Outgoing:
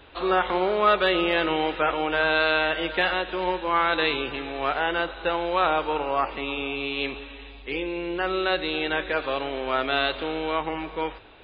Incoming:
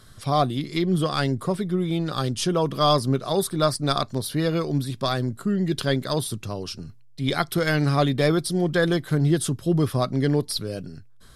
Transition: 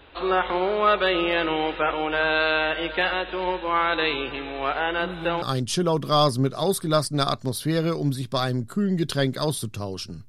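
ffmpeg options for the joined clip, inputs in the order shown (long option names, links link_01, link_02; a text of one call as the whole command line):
ffmpeg -i cue0.wav -i cue1.wav -filter_complex "[1:a]asplit=2[link_01][link_02];[0:a]apad=whole_dur=10.28,atrim=end=10.28,atrim=end=5.422[link_03];[link_02]atrim=start=2.108:end=6.97[link_04];[link_01]atrim=start=1.69:end=2.11,asetpts=PTS-STARTPTS,volume=-10.5dB,afade=type=in:duration=0.004:curve=hsin,afade=type=out:start_time=0.416:duration=0.004:curve=hsin,adelay=5000[link_05];[link_03][link_04]acrossfade=duration=0.004:curve1=hsin:curve2=hsin[link_06];[link_06][link_05]amix=inputs=2:normalize=0" out.wav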